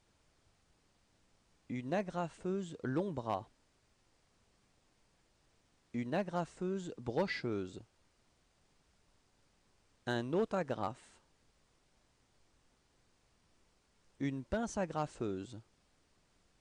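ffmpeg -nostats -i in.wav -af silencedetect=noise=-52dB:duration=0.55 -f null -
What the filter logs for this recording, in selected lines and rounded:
silence_start: 0.00
silence_end: 1.70 | silence_duration: 1.70
silence_start: 3.44
silence_end: 5.94 | silence_duration: 2.50
silence_start: 7.83
silence_end: 10.07 | silence_duration: 2.24
silence_start: 11.16
silence_end: 14.20 | silence_duration: 3.05
silence_start: 15.61
silence_end: 16.60 | silence_duration: 1.00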